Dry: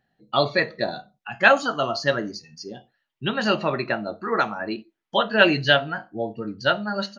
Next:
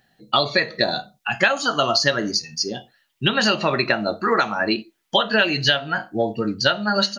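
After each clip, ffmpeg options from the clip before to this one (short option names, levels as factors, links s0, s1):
-af "highshelf=f=2800:g=11.5,acompressor=threshold=0.0794:ratio=12,volume=2.37"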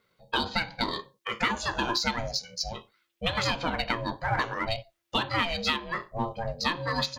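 -filter_complex "[0:a]aeval=exprs='val(0)*sin(2*PI*340*n/s)':c=same,asplit=2[s0][s1];[s1]asoftclip=type=hard:threshold=0.0794,volume=0.355[s2];[s0][s2]amix=inputs=2:normalize=0,volume=0.422"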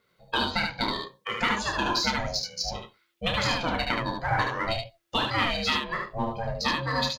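-af "aecho=1:1:30|74:0.422|0.631"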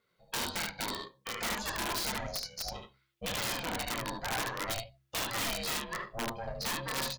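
-af "bandreject=f=65.93:t=h:w=4,bandreject=f=131.86:t=h:w=4,bandreject=f=197.79:t=h:w=4,bandreject=f=263.72:t=h:w=4,bandreject=f=329.65:t=h:w=4,aeval=exprs='(tanh(8.91*val(0)+0.65)-tanh(0.65))/8.91':c=same,aeval=exprs='(mod(12.6*val(0)+1,2)-1)/12.6':c=same,volume=0.668"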